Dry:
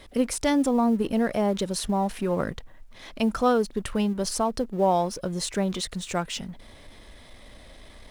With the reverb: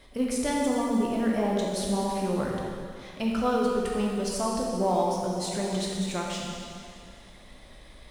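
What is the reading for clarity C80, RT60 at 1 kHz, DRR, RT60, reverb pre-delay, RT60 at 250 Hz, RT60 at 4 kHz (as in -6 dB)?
1.0 dB, 2.4 s, -3.0 dB, 2.4 s, 6 ms, 2.4 s, 2.2 s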